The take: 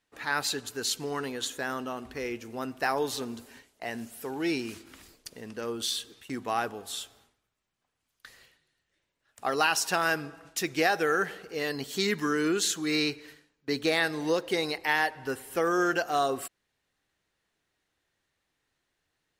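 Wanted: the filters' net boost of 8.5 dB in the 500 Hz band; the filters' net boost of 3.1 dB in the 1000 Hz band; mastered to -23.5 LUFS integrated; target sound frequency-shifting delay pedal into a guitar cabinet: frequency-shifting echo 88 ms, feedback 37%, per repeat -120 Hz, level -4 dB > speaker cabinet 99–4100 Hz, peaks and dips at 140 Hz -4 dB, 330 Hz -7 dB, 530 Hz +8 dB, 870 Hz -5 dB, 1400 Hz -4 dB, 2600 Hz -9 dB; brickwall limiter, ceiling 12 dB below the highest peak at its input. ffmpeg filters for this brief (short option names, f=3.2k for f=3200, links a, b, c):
-filter_complex "[0:a]equalizer=f=500:t=o:g=5,equalizer=f=1k:t=o:g=6,alimiter=limit=-19dB:level=0:latency=1,asplit=6[a][b][c][d][e][f];[b]adelay=88,afreqshift=-120,volume=-4dB[g];[c]adelay=176,afreqshift=-240,volume=-12.6dB[h];[d]adelay=264,afreqshift=-360,volume=-21.3dB[i];[e]adelay=352,afreqshift=-480,volume=-29.9dB[j];[f]adelay=440,afreqshift=-600,volume=-38.5dB[k];[a][g][h][i][j][k]amix=inputs=6:normalize=0,highpass=99,equalizer=f=140:t=q:w=4:g=-4,equalizer=f=330:t=q:w=4:g=-7,equalizer=f=530:t=q:w=4:g=8,equalizer=f=870:t=q:w=4:g=-5,equalizer=f=1.4k:t=q:w=4:g=-4,equalizer=f=2.6k:t=q:w=4:g=-9,lowpass=f=4.1k:w=0.5412,lowpass=f=4.1k:w=1.3066,volume=6dB"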